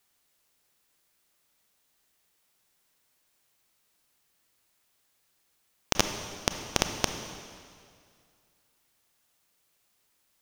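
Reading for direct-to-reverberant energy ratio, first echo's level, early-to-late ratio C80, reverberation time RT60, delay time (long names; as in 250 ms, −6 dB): 6.5 dB, no echo audible, 8.5 dB, 2.2 s, no echo audible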